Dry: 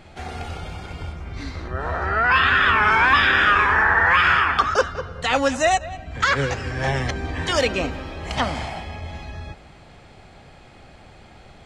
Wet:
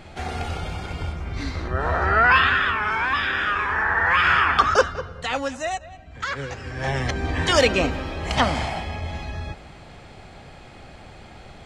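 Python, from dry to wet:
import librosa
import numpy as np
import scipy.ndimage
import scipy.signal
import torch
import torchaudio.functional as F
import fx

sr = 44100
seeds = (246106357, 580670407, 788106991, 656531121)

y = fx.gain(x, sr, db=fx.line((2.24, 3.0), (2.78, -7.0), (3.6, -7.0), (4.73, 2.5), (5.59, -9.0), (6.43, -9.0), (7.3, 3.0)))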